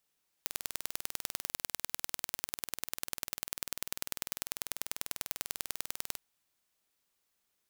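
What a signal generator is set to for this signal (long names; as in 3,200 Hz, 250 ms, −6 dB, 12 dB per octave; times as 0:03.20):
impulse train 20.2 per second, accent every 2, −5.5 dBFS 5.72 s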